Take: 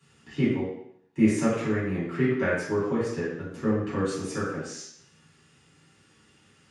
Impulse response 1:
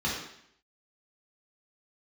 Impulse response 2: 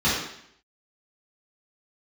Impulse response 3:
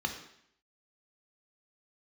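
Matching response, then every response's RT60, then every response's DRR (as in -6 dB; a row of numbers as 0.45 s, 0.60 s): 2; 0.70 s, 0.70 s, 0.70 s; -6.5 dB, -11.0 dB, 3.5 dB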